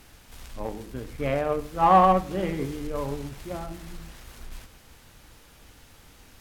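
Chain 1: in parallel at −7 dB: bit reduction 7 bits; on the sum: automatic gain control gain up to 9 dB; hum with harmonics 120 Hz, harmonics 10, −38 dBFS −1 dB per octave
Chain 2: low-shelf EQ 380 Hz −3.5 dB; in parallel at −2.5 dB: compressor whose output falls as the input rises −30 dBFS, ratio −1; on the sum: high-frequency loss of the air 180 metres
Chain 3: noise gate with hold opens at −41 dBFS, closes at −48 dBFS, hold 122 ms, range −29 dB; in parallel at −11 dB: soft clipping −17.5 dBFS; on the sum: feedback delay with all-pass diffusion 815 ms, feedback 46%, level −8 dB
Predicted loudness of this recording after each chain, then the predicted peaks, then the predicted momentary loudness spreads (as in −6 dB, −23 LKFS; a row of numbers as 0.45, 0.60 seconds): −19.0, −25.0, −24.0 LKFS; −1.0, −8.0, −6.0 dBFS; 23, 23, 24 LU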